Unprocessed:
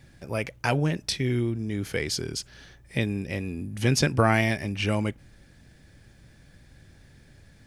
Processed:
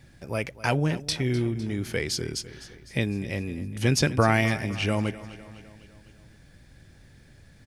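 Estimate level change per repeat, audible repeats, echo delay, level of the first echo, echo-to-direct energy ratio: −4.5 dB, 4, 253 ms, −16.5 dB, −14.5 dB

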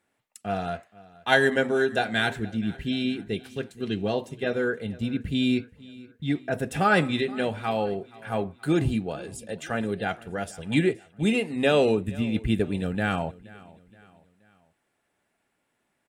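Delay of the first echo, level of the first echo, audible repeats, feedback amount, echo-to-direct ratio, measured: 474 ms, −21.5 dB, 2, 45%, −20.5 dB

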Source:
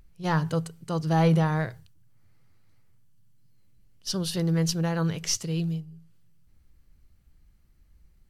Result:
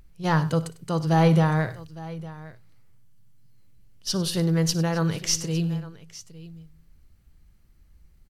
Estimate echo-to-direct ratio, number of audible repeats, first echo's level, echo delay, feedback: −13.0 dB, 3, −18.0 dB, 58 ms, repeats not evenly spaced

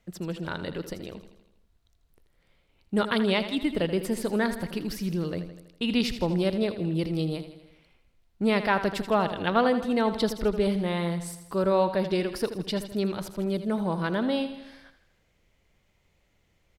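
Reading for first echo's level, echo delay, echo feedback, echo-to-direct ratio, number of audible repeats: −11.5 dB, 81 ms, 57%, −10.0 dB, 5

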